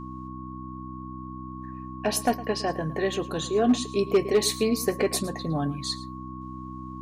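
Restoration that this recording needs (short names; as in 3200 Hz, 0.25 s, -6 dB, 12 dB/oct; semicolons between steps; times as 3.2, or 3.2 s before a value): clip repair -14 dBFS; de-hum 63.9 Hz, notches 5; notch 1100 Hz, Q 30; inverse comb 0.11 s -17.5 dB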